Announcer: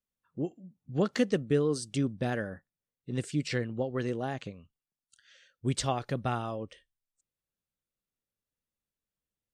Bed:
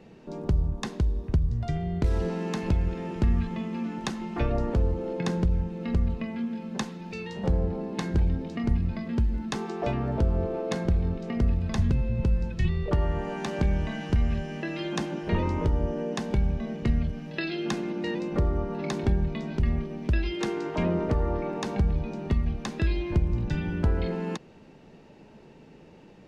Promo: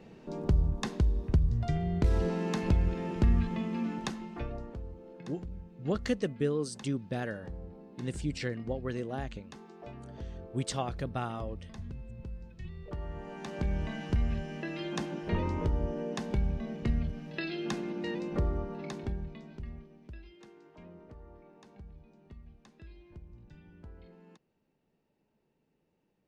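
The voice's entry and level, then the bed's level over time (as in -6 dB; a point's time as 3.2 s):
4.90 s, -3.5 dB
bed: 3.92 s -1.5 dB
4.81 s -18 dB
12.64 s -18 dB
13.86 s -5 dB
18.48 s -5 dB
20.45 s -25.5 dB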